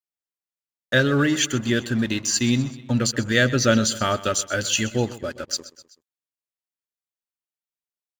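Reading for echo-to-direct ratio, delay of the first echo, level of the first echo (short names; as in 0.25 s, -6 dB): -15.5 dB, 0.127 s, -17.0 dB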